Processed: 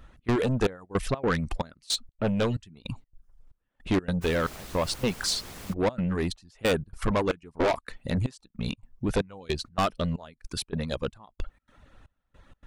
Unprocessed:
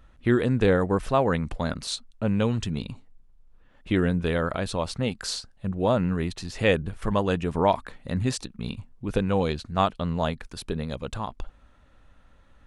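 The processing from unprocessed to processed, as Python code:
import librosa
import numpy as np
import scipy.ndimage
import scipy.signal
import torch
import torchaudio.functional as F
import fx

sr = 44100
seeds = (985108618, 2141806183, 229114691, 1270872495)

y = fx.dereverb_blind(x, sr, rt60_s=0.58)
y = fx.step_gate(y, sr, bpm=158, pattern='xx.xxxx...', floor_db=-24.0, edge_ms=4.5)
y = fx.dmg_noise_colour(y, sr, seeds[0], colour='pink', level_db=-47.0, at=(4.21, 5.72), fade=0.02)
y = 10.0 ** (-25.0 / 20.0) * np.tanh(y / 10.0 ** (-25.0 / 20.0))
y = fx.hpss(y, sr, part='harmonic', gain_db=-4)
y = fx.doppler_dist(y, sr, depth_ms=0.99, at=(7.3, 7.86))
y = y * librosa.db_to_amplitude(6.5)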